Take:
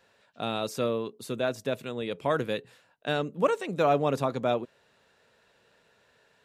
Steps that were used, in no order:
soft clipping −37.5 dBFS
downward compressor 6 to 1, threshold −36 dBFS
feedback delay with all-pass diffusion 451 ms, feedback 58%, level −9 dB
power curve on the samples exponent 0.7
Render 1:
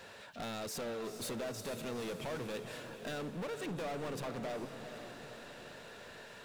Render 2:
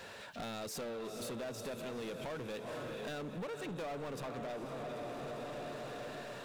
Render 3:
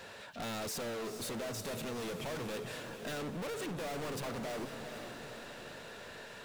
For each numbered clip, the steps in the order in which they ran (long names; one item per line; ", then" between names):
downward compressor, then power curve on the samples, then soft clipping, then feedback delay with all-pass diffusion
power curve on the samples, then feedback delay with all-pass diffusion, then downward compressor, then soft clipping
power curve on the samples, then soft clipping, then feedback delay with all-pass diffusion, then downward compressor